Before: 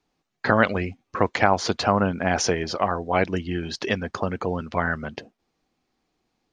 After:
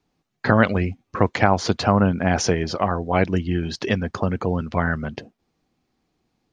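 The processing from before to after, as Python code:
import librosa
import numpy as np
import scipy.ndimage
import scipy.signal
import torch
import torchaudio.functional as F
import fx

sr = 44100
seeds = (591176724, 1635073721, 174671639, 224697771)

y = fx.peak_eq(x, sr, hz=110.0, db=7.5, octaves=2.7)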